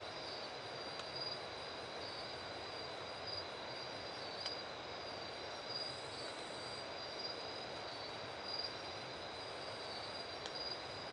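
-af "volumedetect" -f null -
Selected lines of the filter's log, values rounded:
mean_volume: -46.4 dB
max_volume: -26.7 dB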